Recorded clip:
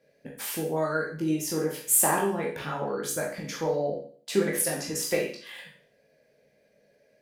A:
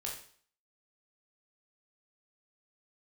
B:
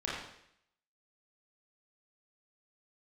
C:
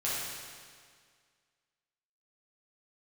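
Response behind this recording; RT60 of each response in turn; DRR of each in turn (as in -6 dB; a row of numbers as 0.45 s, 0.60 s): A; 0.50 s, 0.70 s, 1.9 s; -2.5 dB, -7.0 dB, -9.0 dB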